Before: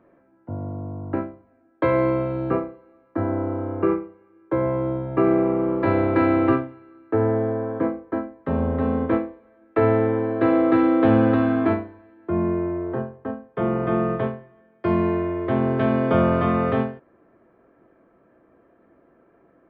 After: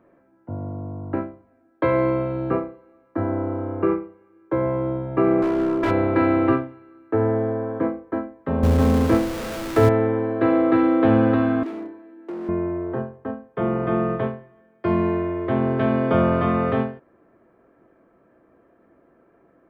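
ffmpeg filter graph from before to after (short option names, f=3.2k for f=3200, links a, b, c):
-filter_complex "[0:a]asettb=1/sr,asplit=3[a][b][c];[a]atrim=end=5.424[d];[b]atrim=start=5.42:end=5.91,asetpts=PTS-STARTPTS,afade=t=in:d=0.004:c=qsin,afade=t=out:st=0.486:d=0.004:c=qsin,aecho=1:1:3:0.49,atrim=end_sample=21609,asoftclip=type=hard:threshold=-17.5dB[e];[c]atrim=start=5.906[f];[d][e]acrossfade=d=0.004:c1=hsin:c2=qsin[g];[g][f]acrossfade=d=0.004:c1=qsin:c2=hsin,asettb=1/sr,asplit=3[h][i][j];[h]atrim=end=8.634[k];[i]atrim=start=8.63:end=9.89,asetpts=PTS-STARTPTS,afade=t=in:d=0.004:c=qsin,afade=t=out:st=1.256:d=0.004:c=qsin,aeval=exprs='val(0)+0.5*0.0562*sgn(val(0))':c=same,lowshelf=f=120:g=10.5[l];[j]atrim=start=9.886[m];[k][l]acrossfade=d=0.004:c1=hsin:c2=qsin[n];[n][m]acrossfade=d=0.004:c1=qsin:c2=hsin,asettb=1/sr,asplit=3[o][p][q];[o]atrim=end=11.634[r];[p]atrim=start=11.63:end=12.49,asetpts=PTS-STARTPTS,afade=t=in:d=0.004:c=qsin,afade=t=out:st=0.856:d=0.004:c=qsin,acompressor=threshold=-29dB:ratio=5:attack=3.2:release=140:knee=1:detection=peak,asoftclip=type=hard:threshold=-33.5dB,highpass=f=290:t=q:w=2.5[s];[q]atrim=start=12.486[t];[r][s]acrossfade=d=0.004:c1=hsin:c2=qsin[u];[u][t]acrossfade=d=0.004:c1=qsin:c2=hsin"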